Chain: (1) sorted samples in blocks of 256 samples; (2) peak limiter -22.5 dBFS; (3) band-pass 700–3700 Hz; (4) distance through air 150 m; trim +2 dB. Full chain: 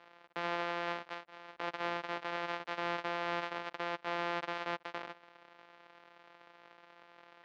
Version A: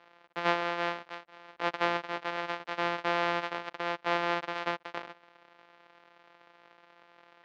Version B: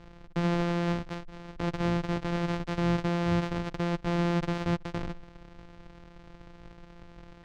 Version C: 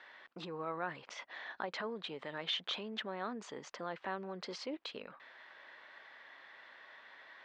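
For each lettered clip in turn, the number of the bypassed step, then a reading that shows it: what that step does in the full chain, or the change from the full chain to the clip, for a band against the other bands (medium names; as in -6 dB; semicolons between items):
2, mean gain reduction 2.0 dB; 3, 125 Hz band +22.0 dB; 1, 4 kHz band +7.0 dB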